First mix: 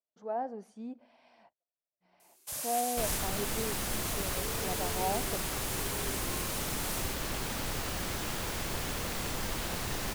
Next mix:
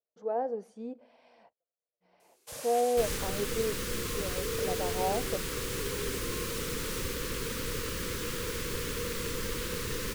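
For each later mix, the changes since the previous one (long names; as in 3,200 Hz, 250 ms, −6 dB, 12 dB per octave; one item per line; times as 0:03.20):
first sound: add high-shelf EQ 8,800 Hz −12 dB
second sound: add Butterworth band-reject 720 Hz, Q 1.3
master: add parametric band 480 Hz +13 dB 0.32 octaves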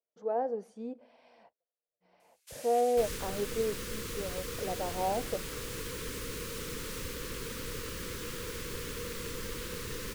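first sound: add four-pole ladder high-pass 1,300 Hz, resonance 20%
second sound −4.5 dB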